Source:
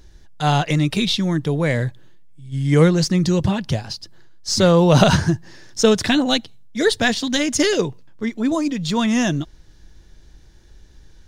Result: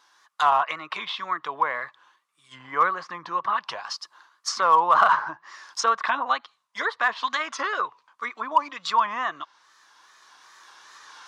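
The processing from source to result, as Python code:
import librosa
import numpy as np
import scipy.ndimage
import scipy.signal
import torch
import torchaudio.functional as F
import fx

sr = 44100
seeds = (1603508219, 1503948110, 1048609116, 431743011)

p1 = fx.recorder_agc(x, sr, target_db=-10.5, rise_db_per_s=7.7, max_gain_db=30)
p2 = fx.env_lowpass_down(p1, sr, base_hz=1500.0, full_db=-14.0)
p3 = fx.highpass_res(p2, sr, hz=1100.0, q=9.0)
p4 = fx.small_body(p3, sr, hz=(1400.0, 3600.0), ring_ms=45, db=12, at=(7.47, 7.87))
p5 = fx.wow_flutter(p4, sr, seeds[0], rate_hz=2.1, depth_cents=98.0)
p6 = np.clip(p5, -10.0 ** (-9.0 / 20.0), 10.0 ** (-9.0 / 20.0))
p7 = p5 + F.gain(torch.from_numpy(p6), -5.0).numpy()
y = F.gain(torch.from_numpy(p7), -7.0).numpy()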